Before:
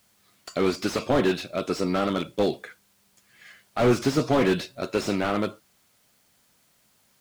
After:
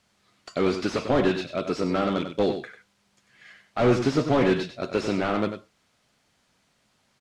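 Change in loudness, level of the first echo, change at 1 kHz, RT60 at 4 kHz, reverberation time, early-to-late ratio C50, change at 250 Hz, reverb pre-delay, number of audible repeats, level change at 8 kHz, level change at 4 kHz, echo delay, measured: 0.0 dB, −9.0 dB, 0.0 dB, no reverb audible, no reverb audible, no reverb audible, +0.5 dB, no reverb audible, 1, −5.5 dB, −1.5 dB, 96 ms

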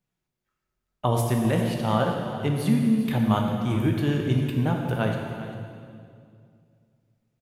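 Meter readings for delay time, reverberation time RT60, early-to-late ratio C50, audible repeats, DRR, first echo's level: 398 ms, 2.3 s, 2.5 dB, 1, 1.0 dB, −14.5 dB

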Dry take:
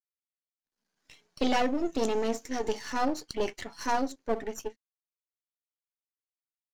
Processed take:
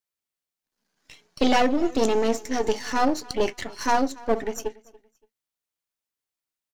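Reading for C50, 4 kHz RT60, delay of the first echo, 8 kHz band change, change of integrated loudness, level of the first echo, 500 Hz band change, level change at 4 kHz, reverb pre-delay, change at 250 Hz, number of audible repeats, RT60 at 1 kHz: no reverb audible, no reverb audible, 285 ms, +6.5 dB, +6.5 dB, −22.5 dB, +6.5 dB, +6.5 dB, no reverb audible, +6.5 dB, 2, no reverb audible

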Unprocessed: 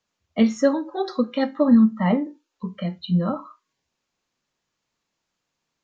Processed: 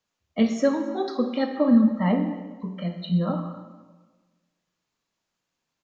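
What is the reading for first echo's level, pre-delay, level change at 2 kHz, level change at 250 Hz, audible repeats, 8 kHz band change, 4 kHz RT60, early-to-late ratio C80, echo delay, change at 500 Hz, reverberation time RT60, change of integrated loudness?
−23.0 dB, 24 ms, −2.5 dB, −2.0 dB, 1, can't be measured, 1.0 s, 9.0 dB, 274 ms, −2.0 dB, 1.3 s, −2.5 dB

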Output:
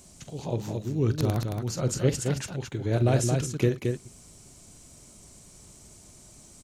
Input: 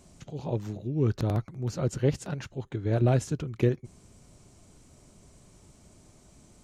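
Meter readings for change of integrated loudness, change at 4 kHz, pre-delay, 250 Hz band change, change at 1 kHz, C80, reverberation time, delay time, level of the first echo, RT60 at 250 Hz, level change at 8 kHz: +1.5 dB, +7.5 dB, no reverb audible, +1.5 dB, +2.0 dB, no reverb audible, no reverb audible, 44 ms, −13.0 dB, no reverb audible, +10.5 dB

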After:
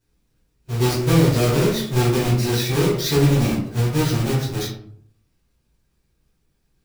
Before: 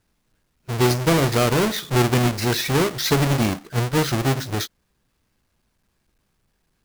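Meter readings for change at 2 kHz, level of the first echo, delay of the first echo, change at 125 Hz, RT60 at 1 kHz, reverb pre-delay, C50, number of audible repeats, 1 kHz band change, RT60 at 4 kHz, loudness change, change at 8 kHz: −3.5 dB, no echo audible, no echo audible, +3.5 dB, 0.55 s, 7 ms, 5.0 dB, no echo audible, −4.0 dB, 0.35 s, +1.0 dB, −1.0 dB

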